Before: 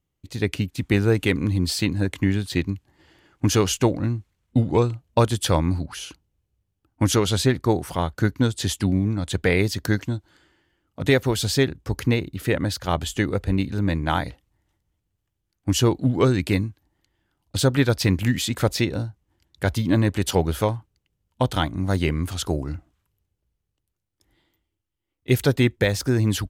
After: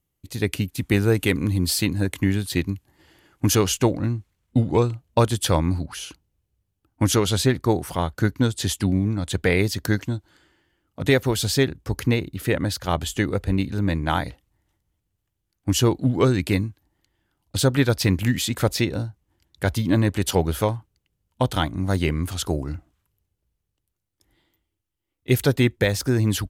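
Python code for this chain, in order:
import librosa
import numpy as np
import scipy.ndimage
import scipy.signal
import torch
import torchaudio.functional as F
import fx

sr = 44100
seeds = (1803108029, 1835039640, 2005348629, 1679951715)

y = fx.peak_eq(x, sr, hz=12000.0, db=fx.steps((0.0, 11.0), (3.55, 3.5)), octaves=0.83)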